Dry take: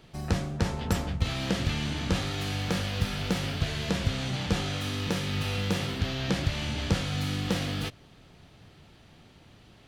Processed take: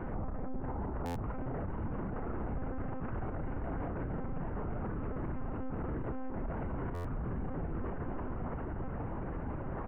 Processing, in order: CVSD 16 kbps; negative-ratio compressor -38 dBFS, ratio -1; LPF 1300 Hz 24 dB/oct; multi-head echo 0.33 s, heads second and third, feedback 71%, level -16 dB; monotone LPC vocoder at 8 kHz 260 Hz; doubler 31 ms -13 dB; limiter -41.5 dBFS, peak gain reduction 16 dB; stuck buffer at 1.05/6.94, samples 512, times 8; gain +11.5 dB

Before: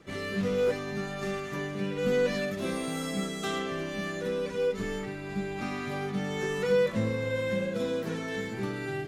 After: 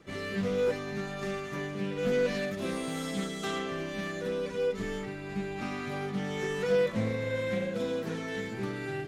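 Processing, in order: Doppler distortion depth 0.15 ms; gain -1.5 dB

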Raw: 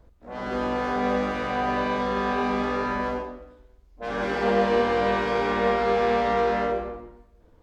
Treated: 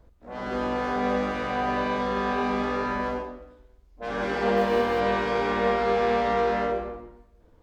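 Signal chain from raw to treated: 4.57–5 G.711 law mismatch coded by A; gain -1 dB

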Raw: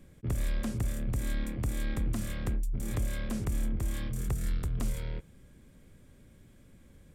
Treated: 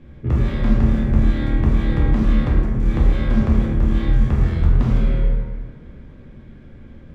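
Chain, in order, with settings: air absorption 260 m; plate-style reverb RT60 1.8 s, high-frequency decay 0.55×, DRR -5.5 dB; gain +8.5 dB

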